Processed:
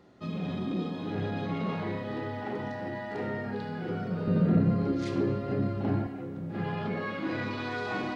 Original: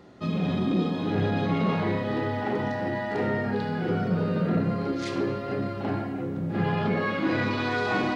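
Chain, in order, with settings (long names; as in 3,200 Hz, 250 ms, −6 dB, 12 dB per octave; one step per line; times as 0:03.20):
0:04.27–0:06.07: low-shelf EQ 390 Hz +11 dB
level −7 dB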